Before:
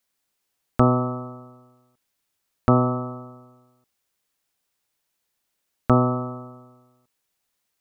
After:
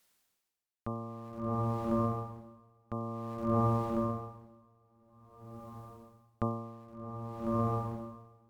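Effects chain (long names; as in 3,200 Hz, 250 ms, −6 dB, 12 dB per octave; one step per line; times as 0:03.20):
in parallel at −10.5 dB: centre clipping without the shift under −30 dBFS
on the sum: feedback delay with all-pass diffusion 555 ms, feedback 53%, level −13 dB
wrong playback speed 48 kHz file played as 44.1 kHz
tremolo with a sine in dB 0.52 Hz, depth 29 dB
level +5.5 dB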